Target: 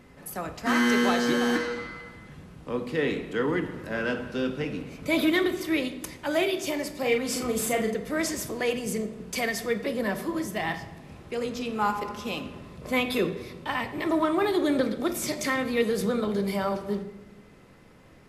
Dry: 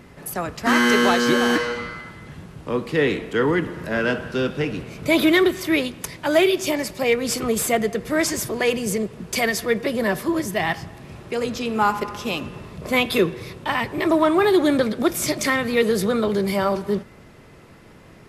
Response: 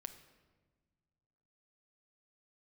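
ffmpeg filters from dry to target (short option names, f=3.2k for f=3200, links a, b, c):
-filter_complex "[0:a]asettb=1/sr,asplit=3[a][b][c];[a]atrim=end=6.974[d];[b]atrim=start=6.97:end=7.94,asetpts=PTS-STARTPTS,afade=t=in:d=0.004:c=qsin,afade=t=out:st=0.966:d=0.004:c=qsin,asplit=2[e][f];[f]adelay=41,volume=-4.5dB[g];[e][g]amix=inputs=2:normalize=0,atrim=end_sample=42777[h];[c]atrim=start=7.936[i];[d][h]acrossfade=d=0.004:c1=hsin:c2=qsin[j];[j][i]acrossfade=d=0.004:c1=qsin:c2=hsin[k];[1:a]atrim=start_sample=2205,asetrate=70560,aresample=44100[l];[k][l]afir=irnorm=-1:irlink=0,volume=1.5dB"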